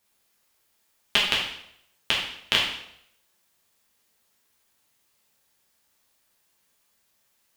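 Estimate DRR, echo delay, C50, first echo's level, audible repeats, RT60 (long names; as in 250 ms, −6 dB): −5.0 dB, no echo audible, 3.5 dB, no echo audible, no echo audible, 0.75 s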